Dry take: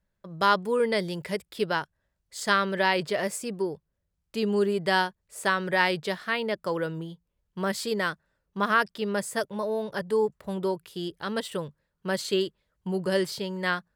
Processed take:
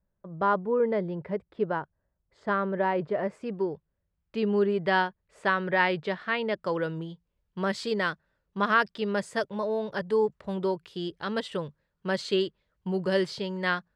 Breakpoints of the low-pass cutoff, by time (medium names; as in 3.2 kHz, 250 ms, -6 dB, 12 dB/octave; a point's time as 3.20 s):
3.15 s 1.1 kHz
3.63 s 2.7 kHz
6.15 s 2.7 kHz
6.79 s 4.9 kHz